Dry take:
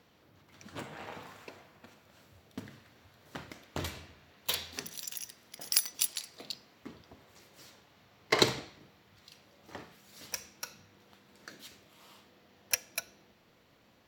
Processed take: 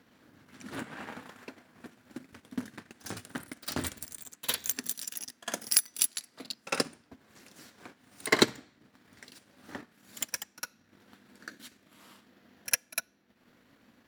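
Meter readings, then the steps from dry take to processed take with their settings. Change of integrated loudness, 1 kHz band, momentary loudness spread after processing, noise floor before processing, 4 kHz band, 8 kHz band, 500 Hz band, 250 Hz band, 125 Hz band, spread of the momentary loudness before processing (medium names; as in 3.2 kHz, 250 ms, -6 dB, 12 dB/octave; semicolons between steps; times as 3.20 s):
+2.5 dB, +1.5 dB, 23 LU, -65 dBFS, +1.0 dB, +4.5 dB, +2.0 dB, +6.0 dB, -1.0 dB, 23 LU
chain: ever faster or slower copies 117 ms, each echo +4 st, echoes 2, each echo -6 dB; pre-echo 54 ms -14.5 dB; transient shaper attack +2 dB, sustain -11 dB; fifteen-band graphic EQ 250 Hz +11 dB, 1.6 kHz +7 dB, 10 kHz +7 dB; trim -2 dB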